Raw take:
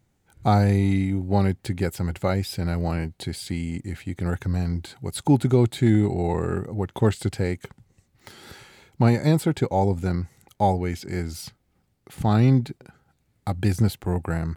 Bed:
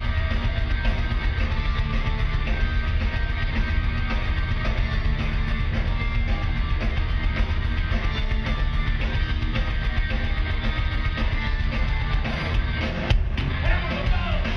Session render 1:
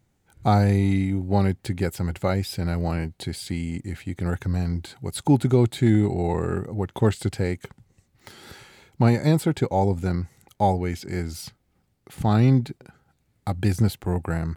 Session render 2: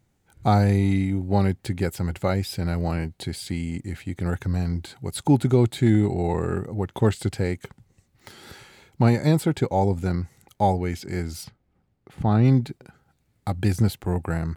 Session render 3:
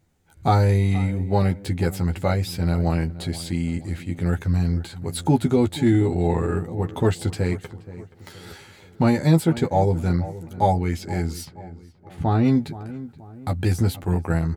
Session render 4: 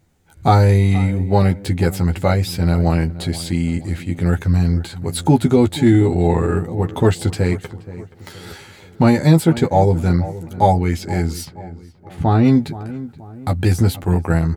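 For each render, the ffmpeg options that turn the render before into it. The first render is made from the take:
ffmpeg -i in.wav -af anull out.wav
ffmpeg -i in.wav -filter_complex "[0:a]asplit=3[link_01][link_02][link_03];[link_01]afade=type=out:start_time=11.43:duration=0.02[link_04];[link_02]lowpass=frequency=1700:poles=1,afade=type=in:start_time=11.43:duration=0.02,afade=type=out:start_time=12.44:duration=0.02[link_05];[link_03]afade=type=in:start_time=12.44:duration=0.02[link_06];[link_04][link_05][link_06]amix=inputs=3:normalize=0" out.wav
ffmpeg -i in.wav -filter_complex "[0:a]asplit=2[link_01][link_02];[link_02]adelay=12,volume=-4dB[link_03];[link_01][link_03]amix=inputs=2:normalize=0,asplit=2[link_04][link_05];[link_05]adelay=476,lowpass=frequency=1600:poles=1,volume=-15.5dB,asplit=2[link_06][link_07];[link_07]adelay=476,lowpass=frequency=1600:poles=1,volume=0.46,asplit=2[link_08][link_09];[link_09]adelay=476,lowpass=frequency=1600:poles=1,volume=0.46,asplit=2[link_10][link_11];[link_11]adelay=476,lowpass=frequency=1600:poles=1,volume=0.46[link_12];[link_04][link_06][link_08][link_10][link_12]amix=inputs=5:normalize=0" out.wav
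ffmpeg -i in.wav -af "volume=5.5dB,alimiter=limit=-1dB:level=0:latency=1" out.wav

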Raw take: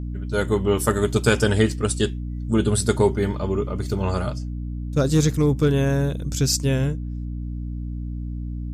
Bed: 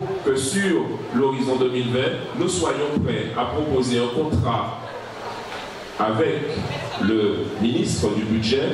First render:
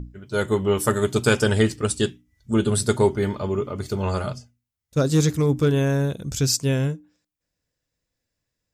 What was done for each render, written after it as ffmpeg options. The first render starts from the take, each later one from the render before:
ffmpeg -i in.wav -af "bandreject=frequency=60:width_type=h:width=6,bandreject=frequency=120:width_type=h:width=6,bandreject=frequency=180:width_type=h:width=6,bandreject=frequency=240:width_type=h:width=6,bandreject=frequency=300:width_type=h:width=6" out.wav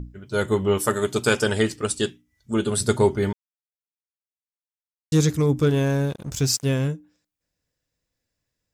ffmpeg -i in.wav -filter_complex "[0:a]asettb=1/sr,asplit=3[link_01][link_02][link_03];[link_01]atrim=end=0.784[link_04];[link_02]atrim=start=0.78:end=2.81,asetpts=PTS-STARTPTS,afade=type=in:duration=0.004:curve=qsin,afade=type=out:start_time=2.026:duration=0.004:curve=qsin,lowshelf=frequency=160:gain=-9.5[link_05];[link_03]atrim=start=2.806[link_06];[link_04][link_05]acrossfade=duration=0.004:curve1=hsin:curve2=qsin[link_07];[link_07][link_06]acrossfade=duration=0.004:curve1=qsin:curve2=hsin,asettb=1/sr,asplit=3[link_08][link_09][link_10];[link_08]atrim=end=5.694[link_11];[link_09]atrim=start=5.69:end=6.88,asetpts=PTS-STARTPTS,afade=type=in:duration=0.004:curve=qsin,afade=type=out:start_time=1.186:duration=0.004:curve=qsin,aeval=exprs='sgn(val(0))*max(abs(val(0))-0.01,0)':channel_layout=same[link_12];[link_10]atrim=start=6.876[link_13];[link_11][link_12]acrossfade=duration=0.004:curve1=hsin:curve2=qsin[link_14];[link_14][link_13]acrossfade=duration=0.004:curve1=qsin:curve2=hsin,asplit=3[link_15][link_16][link_17];[link_15]atrim=end=3.33,asetpts=PTS-STARTPTS,afade=type=out:start_time=3.326:duration=0.004:curve=hsin[link_18];[link_16]atrim=start=3.33:end=5.12,asetpts=PTS-STARTPTS,volume=0[link_19];[link_17]atrim=start=5.12,asetpts=PTS-STARTPTS,afade=type=in:duration=0.004:curve=hsin[link_20];[link_18][link_19][link_20]concat=n=3:v=0:a=1" out.wav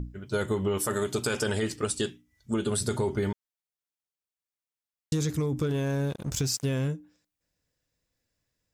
ffmpeg -i in.wav -af "alimiter=limit=-15dB:level=0:latency=1:release=22,acompressor=threshold=-24dB:ratio=6" out.wav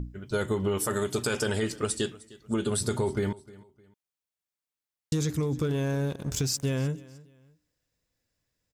ffmpeg -i in.wav -af "aecho=1:1:306|612:0.0891|0.0276" out.wav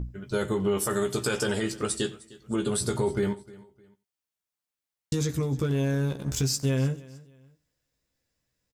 ffmpeg -i in.wav -filter_complex "[0:a]asplit=2[link_01][link_02];[link_02]adelay=15,volume=-6.5dB[link_03];[link_01][link_03]amix=inputs=2:normalize=0,aecho=1:1:91:0.0891" out.wav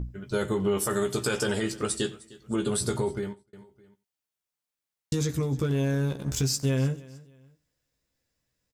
ffmpeg -i in.wav -filter_complex "[0:a]asplit=2[link_01][link_02];[link_01]atrim=end=3.53,asetpts=PTS-STARTPTS,afade=type=out:start_time=2.93:duration=0.6[link_03];[link_02]atrim=start=3.53,asetpts=PTS-STARTPTS,afade=type=in:duration=0.004:curve=hsin[link_04];[link_03][link_04]concat=n=2:v=0:a=1" out.wav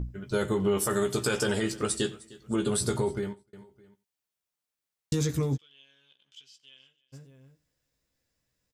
ffmpeg -i in.wav -filter_complex "[0:a]asplit=3[link_01][link_02][link_03];[link_01]afade=type=out:start_time=5.56:duration=0.02[link_04];[link_02]bandpass=frequency=3100:width_type=q:width=18,afade=type=in:start_time=5.56:duration=0.02,afade=type=out:start_time=7.12:duration=0.02[link_05];[link_03]afade=type=in:start_time=7.12:duration=0.02[link_06];[link_04][link_05][link_06]amix=inputs=3:normalize=0" out.wav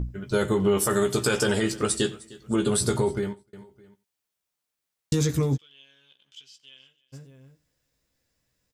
ffmpeg -i in.wav -af "volume=4dB" out.wav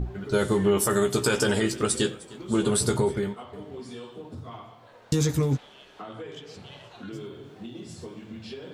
ffmpeg -i in.wav -i bed.wav -filter_complex "[1:a]volume=-19.5dB[link_01];[0:a][link_01]amix=inputs=2:normalize=0" out.wav

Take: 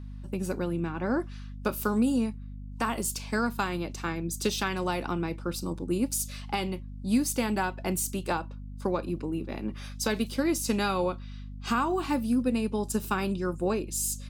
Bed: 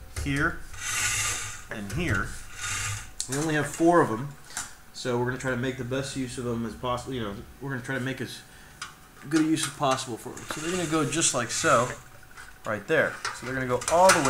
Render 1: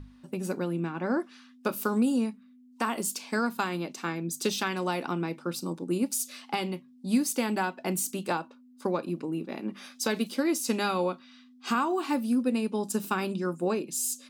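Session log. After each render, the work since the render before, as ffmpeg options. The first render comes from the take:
ffmpeg -i in.wav -af "bandreject=frequency=50:width_type=h:width=6,bandreject=frequency=100:width_type=h:width=6,bandreject=frequency=150:width_type=h:width=6,bandreject=frequency=200:width_type=h:width=6" out.wav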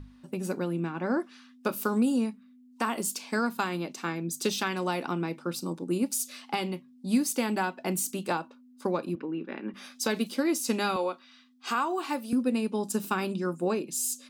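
ffmpeg -i in.wav -filter_complex "[0:a]asettb=1/sr,asplit=3[link_01][link_02][link_03];[link_01]atrim=end=9.154[link_04];[link_02]atrim=start=9.15:end=9.74,asetpts=PTS-STARTPTS,afade=type=in:duration=0.004:curve=qsin,afade=type=out:start_time=0.586:duration=0.004:curve=qsin,highpass=210,equalizer=frequency=690:width_type=q:width=4:gain=-7,equalizer=frequency=1600:width_type=q:width=4:gain=9,equalizer=frequency=4300:width_type=q:width=4:gain=-10,lowpass=frequency=4400:width=0.5412,lowpass=frequency=4400:width=1.3066[link_05];[link_03]atrim=start=9.736[link_06];[link_04][link_05]acrossfade=duration=0.004:curve1=hsin:curve2=qsin[link_07];[link_07][link_06]acrossfade=duration=0.004:curve1=qsin:curve2=hsin,asettb=1/sr,asplit=3[link_08][link_09][link_10];[link_08]atrim=end=10.964[link_11];[link_09]atrim=start=10.96:end=12.33,asetpts=PTS-STARTPTS,afade=type=in:duration=0.004:curve=qsin,afade=type=out:start_time=1.366:duration=0.004:curve=qsin,highpass=370[link_12];[link_10]atrim=start=12.326[link_13];[link_11][link_12]acrossfade=duration=0.004:curve1=hsin:curve2=qsin[link_14];[link_14][link_13]acrossfade=duration=0.004:curve1=qsin:curve2=hsin" out.wav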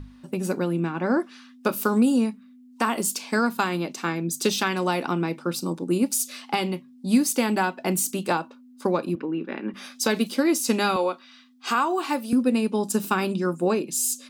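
ffmpeg -i in.wav -af "volume=5.5dB" out.wav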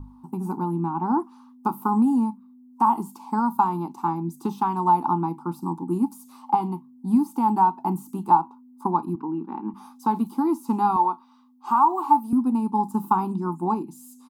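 ffmpeg -i in.wav -filter_complex "[0:a]acrossover=split=3500[link_01][link_02];[link_02]acompressor=threshold=-40dB:ratio=4:attack=1:release=60[link_03];[link_01][link_03]amix=inputs=2:normalize=0,firequalizer=gain_entry='entry(320,0);entry(560,-26);entry(860,14);entry(1700,-24);entry(12000,-3)':delay=0.05:min_phase=1" out.wav

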